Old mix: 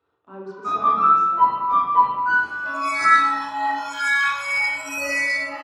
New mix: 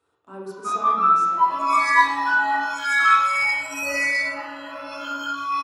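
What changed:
speech: remove air absorption 180 m; first sound: add HPF 780 Hz 6 dB/oct; second sound: entry -1.15 s

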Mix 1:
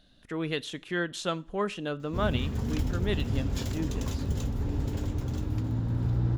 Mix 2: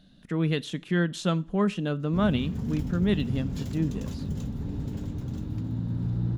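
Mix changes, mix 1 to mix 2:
background -7.0 dB; master: add bell 180 Hz +12.5 dB 1.1 oct

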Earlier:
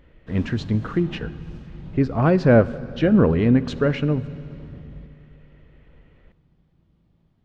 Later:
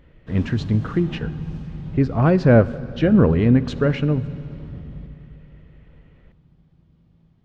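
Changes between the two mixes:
background: send +7.5 dB; master: add bell 110 Hz +3.5 dB 1.4 oct

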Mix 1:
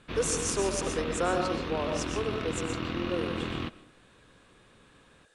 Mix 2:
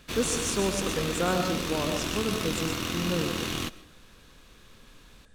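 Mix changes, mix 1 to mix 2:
speech: remove steep high-pass 320 Hz 72 dB/oct; background: remove air absorption 340 m

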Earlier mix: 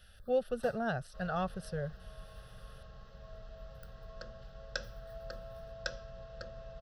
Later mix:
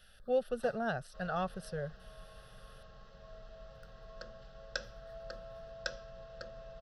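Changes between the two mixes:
first sound: add air absorption 53 m; master: add bell 71 Hz -8.5 dB 1.8 oct

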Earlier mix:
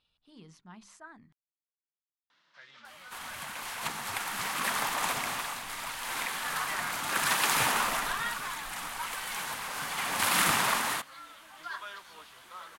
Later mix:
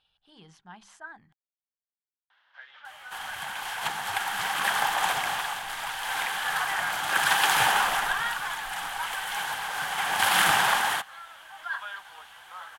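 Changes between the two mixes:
first sound: add three-band isolator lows -17 dB, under 490 Hz, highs -14 dB, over 3500 Hz; master: add thirty-one-band EQ 250 Hz -9 dB, 800 Hz +12 dB, 1600 Hz +9 dB, 3150 Hz +8 dB

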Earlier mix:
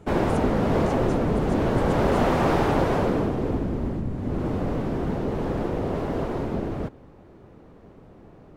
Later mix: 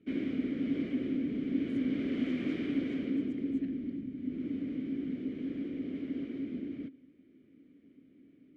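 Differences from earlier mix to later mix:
speech: entry +1.40 s; master: add vowel filter i

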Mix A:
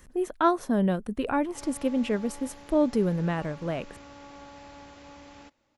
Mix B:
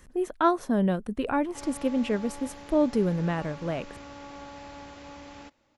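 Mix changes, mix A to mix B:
background +3.5 dB; master: add high shelf 9700 Hz -4 dB

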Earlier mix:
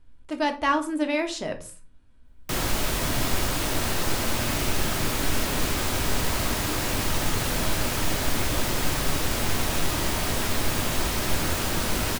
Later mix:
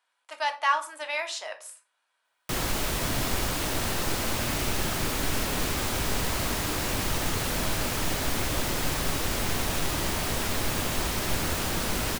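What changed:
speech: add HPF 740 Hz 24 dB/oct; background: send -8.0 dB

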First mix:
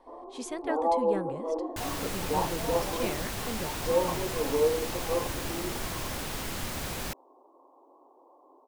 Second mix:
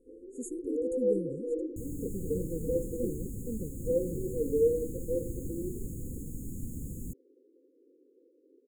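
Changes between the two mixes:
second sound: add EQ curve 280 Hz 0 dB, 440 Hz -15 dB, 3000 Hz -17 dB, 5800 Hz -8 dB, 11000 Hz -10 dB; master: add brick-wall FIR band-stop 530–6500 Hz

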